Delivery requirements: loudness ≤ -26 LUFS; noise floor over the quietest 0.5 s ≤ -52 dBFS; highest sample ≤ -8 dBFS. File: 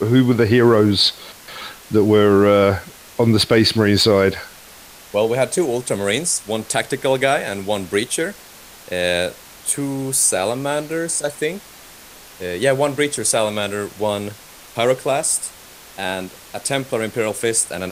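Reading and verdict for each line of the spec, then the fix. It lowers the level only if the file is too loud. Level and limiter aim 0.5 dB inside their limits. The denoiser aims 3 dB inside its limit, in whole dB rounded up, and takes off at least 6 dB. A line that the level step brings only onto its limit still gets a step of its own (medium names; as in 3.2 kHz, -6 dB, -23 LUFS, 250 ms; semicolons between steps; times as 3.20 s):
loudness -18.0 LUFS: fail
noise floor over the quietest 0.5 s -42 dBFS: fail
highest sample -3.5 dBFS: fail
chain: noise reduction 6 dB, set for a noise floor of -42 dBFS; trim -8.5 dB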